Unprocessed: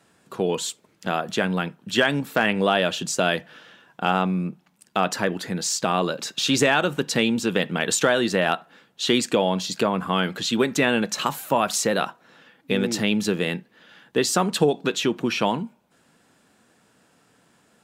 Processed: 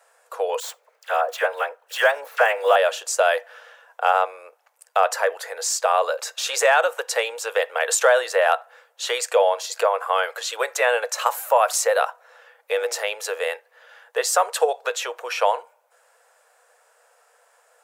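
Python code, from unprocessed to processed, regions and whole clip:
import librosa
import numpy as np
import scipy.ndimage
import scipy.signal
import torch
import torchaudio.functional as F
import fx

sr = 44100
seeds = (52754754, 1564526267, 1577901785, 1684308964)

y = fx.chain(x, sr, fx.median_filter(points=5),
    fx.dispersion(late='lows', ms=44.0, hz=1400.0), at=(0.6, 2.76))
y = scipy.signal.sosfilt(scipy.signal.cheby1(6, 1.0, 480.0, 'highpass', fs=sr, output='sos'), y)
y = fx.peak_eq(y, sr, hz=3500.0, db=-10.0, octaves=1.4)
y = y * librosa.db_to_amplitude(6.0)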